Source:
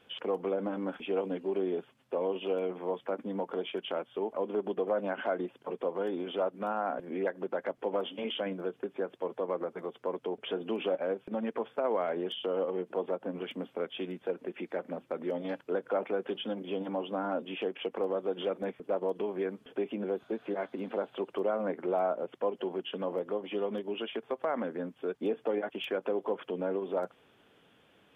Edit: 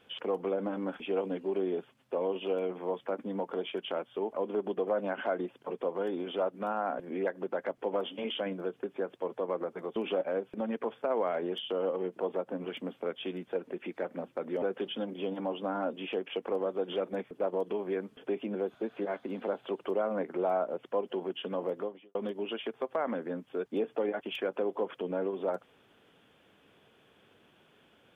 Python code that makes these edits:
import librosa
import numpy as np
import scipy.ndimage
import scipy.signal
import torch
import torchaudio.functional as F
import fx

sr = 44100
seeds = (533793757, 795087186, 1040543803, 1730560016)

y = fx.edit(x, sr, fx.cut(start_s=9.96, length_s=0.74),
    fx.cut(start_s=15.36, length_s=0.75),
    fx.fade_out_span(start_s=23.3, length_s=0.34, curve='qua'), tone=tone)